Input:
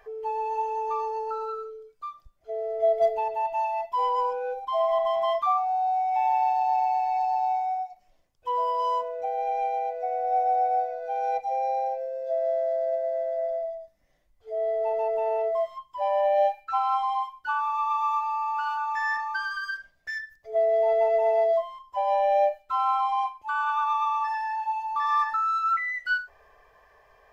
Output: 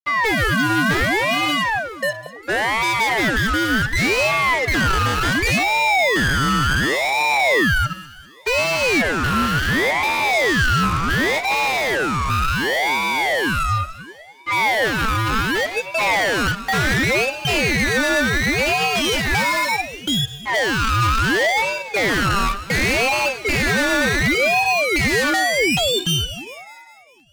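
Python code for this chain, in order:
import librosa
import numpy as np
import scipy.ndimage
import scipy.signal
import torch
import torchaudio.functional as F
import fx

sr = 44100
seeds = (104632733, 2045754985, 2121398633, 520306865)

y = fx.fuzz(x, sr, gain_db=39.0, gate_db=-47.0)
y = fx.echo_alternate(y, sr, ms=100, hz=1400.0, feedback_pct=74, wet_db=-12.0)
y = fx.ring_lfo(y, sr, carrier_hz=1100.0, swing_pct=50, hz=0.69)
y = y * 10.0 ** (-1.5 / 20.0)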